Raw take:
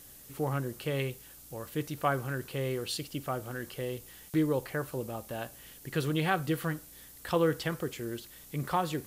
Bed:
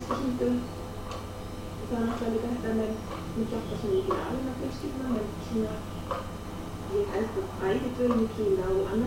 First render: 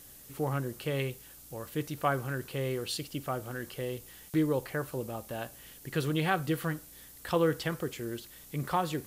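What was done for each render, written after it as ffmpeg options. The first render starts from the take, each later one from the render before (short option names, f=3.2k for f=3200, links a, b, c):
-af anull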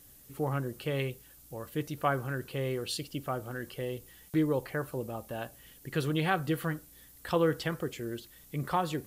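-af "afftdn=nr=6:nf=-52"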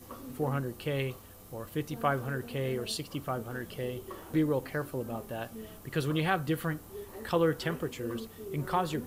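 -filter_complex "[1:a]volume=-15.5dB[a];[0:a][a]amix=inputs=2:normalize=0"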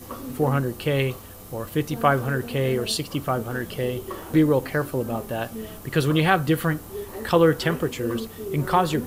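-af "volume=9.5dB"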